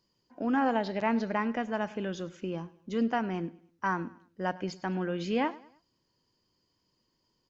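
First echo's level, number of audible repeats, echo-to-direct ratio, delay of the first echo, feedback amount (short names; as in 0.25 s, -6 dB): -20.0 dB, 2, -19.5 dB, 0.103 s, 39%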